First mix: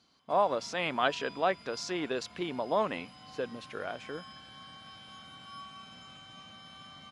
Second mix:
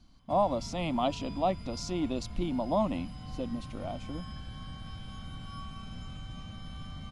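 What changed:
speech: add static phaser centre 430 Hz, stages 6; master: remove frequency weighting A

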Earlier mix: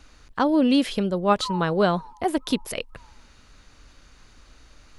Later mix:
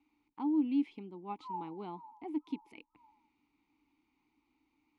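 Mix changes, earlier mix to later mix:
speech -7.0 dB; master: add vowel filter u

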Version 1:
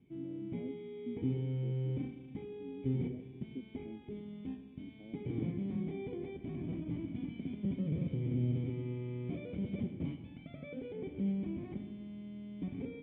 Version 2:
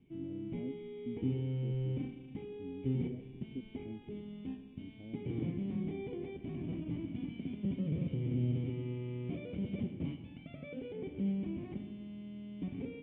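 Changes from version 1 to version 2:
speech: remove high-pass 200 Hz; master: remove band-stop 2.8 kHz, Q 7.3

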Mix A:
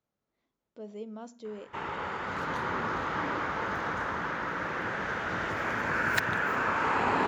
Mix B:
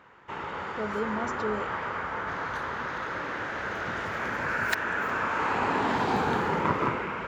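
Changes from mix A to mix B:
speech +8.5 dB; first sound: entry -1.45 s; second sound: add peaking EQ 190 Hz -8 dB 1.5 oct

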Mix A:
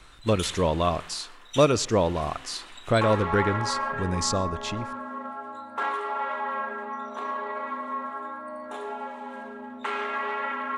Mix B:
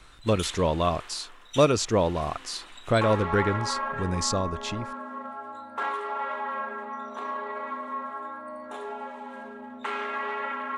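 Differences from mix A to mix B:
speech: send off; background: send -10.5 dB

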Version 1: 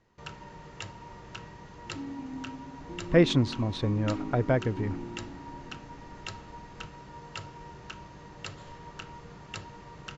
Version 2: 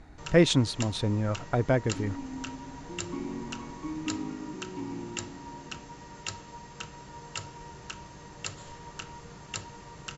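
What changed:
speech: entry -2.80 s; master: remove distance through air 130 m

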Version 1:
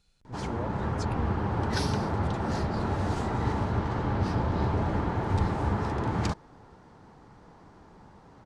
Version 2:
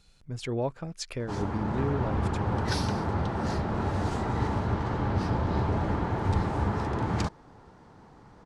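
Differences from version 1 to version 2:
speech +8.0 dB; background: entry +0.95 s

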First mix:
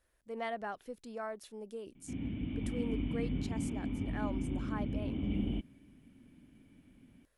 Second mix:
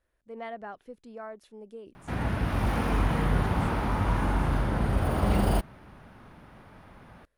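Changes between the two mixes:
background: remove cascade formant filter i; master: add treble shelf 3.9 kHz -10.5 dB

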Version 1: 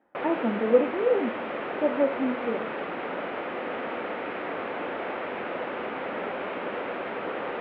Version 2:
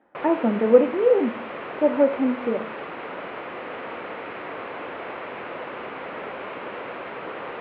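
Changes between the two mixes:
speech +5.5 dB; background: send off

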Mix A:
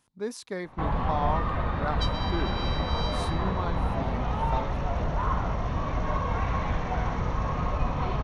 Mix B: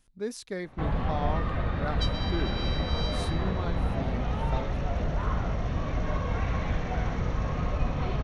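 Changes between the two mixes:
speech: remove high-pass 100 Hz; master: add peaking EQ 980 Hz -8.5 dB 0.67 oct

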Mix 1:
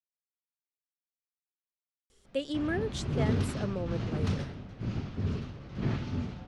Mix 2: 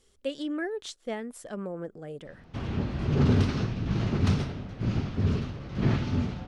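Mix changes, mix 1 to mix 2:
speech: entry -2.10 s; background +6.0 dB

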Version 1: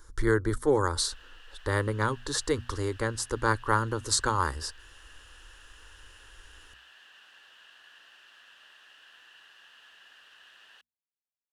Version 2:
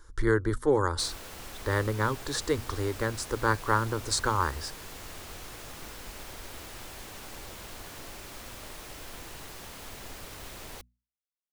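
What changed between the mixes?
speech: add treble shelf 7.7 kHz -7 dB; background: remove two resonant band-passes 2.2 kHz, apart 0.73 oct

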